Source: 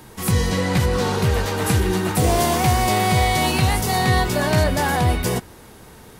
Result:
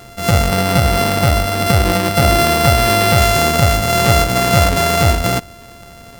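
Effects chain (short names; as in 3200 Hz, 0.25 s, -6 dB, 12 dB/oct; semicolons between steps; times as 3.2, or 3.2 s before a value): sample sorter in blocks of 64 samples; 0.48–3.18 notch 6800 Hz, Q 7.6; gain +5.5 dB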